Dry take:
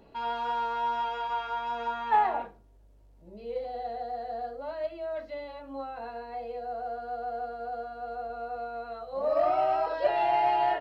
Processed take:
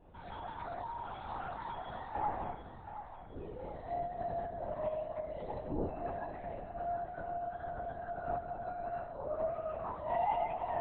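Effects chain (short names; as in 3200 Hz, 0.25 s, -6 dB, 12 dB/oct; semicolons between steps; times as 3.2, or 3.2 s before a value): high shelf 2400 Hz -11 dB; reverse; compressor 12:1, threshold -35 dBFS, peak gain reduction 15 dB; reverse; resonator bank C#3 fifth, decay 0.42 s; on a send at -3 dB: reverb RT60 0.60 s, pre-delay 47 ms; on the sum: LPC vocoder at 8 kHz whisper; split-band echo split 540 Hz, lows 0.251 s, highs 0.722 s, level -11 dB; gain +13.5 dB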